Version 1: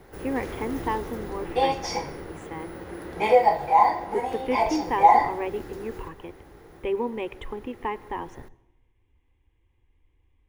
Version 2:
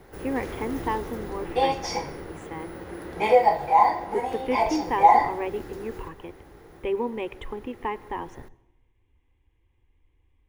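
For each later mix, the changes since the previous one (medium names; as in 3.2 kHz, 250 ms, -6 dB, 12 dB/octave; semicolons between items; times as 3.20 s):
no change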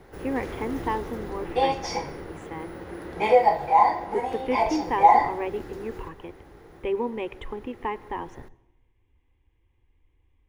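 master: add treble shelf 9.4 kHz -7.5 dB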